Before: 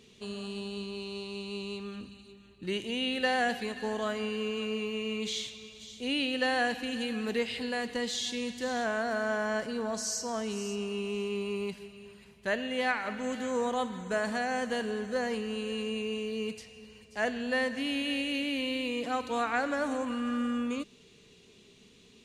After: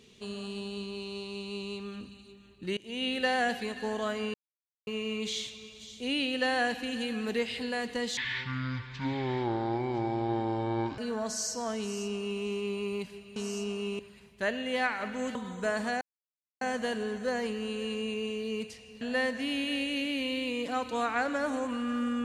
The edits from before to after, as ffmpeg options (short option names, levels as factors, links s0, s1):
-filter_complex "[0:a]asplit=11[s0][s1][s2][s3][s4][s5][s6][s7][s8][s9][s10];[s0]atrim=end=2.77,asetpts=PTS-STARTPTS,afade=t=out:st=2.766:d=0.004:c=hsin:silence=0.0668344[s11];[s1]atrim=start=2.77:end=4.34,asetpts=PTS-STARTPTS,afade=t=in:d=0.28:silence=0.0668344,afade=t=out:st=1.566:d=0.004:c=hsin[s12];[s2]atrim=start=4.34:end=4.87,asetpts=PTS-STARTPTS,volume=0[s13];[s3]atrim=start=4.87:end=8.174,asetpts=PTS-STARTPTS,afade=t=in:d=0.004:c=hsin[s14];[s4]atrim=start=8.17:end=9.66,asetpts=PTS-STARTPTS,asetrate=23373,aresample=44100,atrim=end_sample=123979,asetpts=PTS-STARTPTS[s15];[s5]atrim=start=9.656:end=12.042[s16];[s6]atrim=start=10.478:end=11.112[s17];[s7]atrim=start=12.038:end=13.402[s18];[s8]atrim=start=13.828:end=14.49,asetpts=PTS-STARTPTS,afade=t=out:st=0.658:d=0.004:c=hsin,apad=pad_dur=0.6[s19];[s9]atrim=start=14.49:end=16.892,asetpts=PTS-STARTPTS,afade=t=in:d=0.004:c=hsin[s20];[s10]atrim=start=17.388[s21];[s11][s12][s13][s14]concat=n=4:v=0:a=1[s22];[s22][s15]acrossfade=d=0.004:c1=hsin:c2=hsin[s23];[s23][s16]acrossfade=d=0.004:c1=hsin:c2=hsin[s24];[s24][s17]acrossfade=d=0.004:c1=hsin:c2=hsin[s25];[s25][s18]acrossfade=d=0.004:c1=hsin:c2=hsin[s26];[s19][s20]concat=n=2:v=0:a=1[s27];[s26][s27]acrossfade=d=0.004:c1=hsin:c2=hsin[s28];[s28][s21]acrossfade=d=0.004:c1=hsin:c2=hsin"